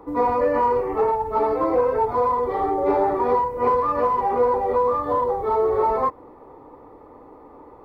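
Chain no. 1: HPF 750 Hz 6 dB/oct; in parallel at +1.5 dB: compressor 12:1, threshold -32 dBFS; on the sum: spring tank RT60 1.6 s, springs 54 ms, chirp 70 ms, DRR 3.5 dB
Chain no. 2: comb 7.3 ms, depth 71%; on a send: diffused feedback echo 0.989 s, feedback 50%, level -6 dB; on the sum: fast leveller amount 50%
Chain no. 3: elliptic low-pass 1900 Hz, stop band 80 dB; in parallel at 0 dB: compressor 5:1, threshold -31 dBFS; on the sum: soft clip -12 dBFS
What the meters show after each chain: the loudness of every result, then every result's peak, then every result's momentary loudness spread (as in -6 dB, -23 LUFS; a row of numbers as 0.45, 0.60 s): -21.0, -17.0, -20.5 LUFS; -9.5, -5.0, -12.5 dBFS; 3, 4, 20 LU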